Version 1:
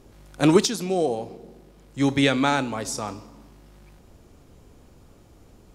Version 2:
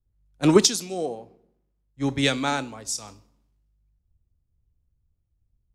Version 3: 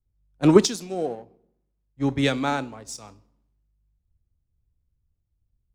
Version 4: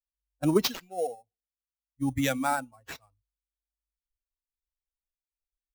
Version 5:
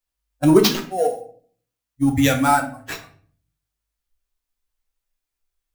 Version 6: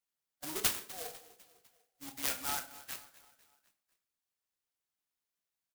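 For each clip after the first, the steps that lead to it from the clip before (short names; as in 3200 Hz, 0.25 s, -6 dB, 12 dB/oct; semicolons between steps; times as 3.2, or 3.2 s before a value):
dynamic EQ 6700 Hz, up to +5 dB, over -44 dBFS, Q 0.75; three-band expander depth 100%; gain -7 dB
high shelf 2500 Hz -9.5 dB; in parallel at -4.5 dB: crossover distortion -41 dBFS; on the sum: gain -2 dB
per-bin expansion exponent 2; in parallel at +2 dB: negative-ratio compressor -27 dBFS, ratio -1; on the sum: sample-rate reducer 9500 Hz, jitter 0%; gain -8 dB
in parallel at -8 dB: soft clip -27 dBFS, distortion -8 dB; on the sum: shoebox room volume 49 m³, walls mixed, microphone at 0.45 m; gain +6.5 dB
differentiator; feedback echo 0.25 s, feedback 50%, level -18.5 dB; clock jitter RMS 0.076 ms; gain -6 dB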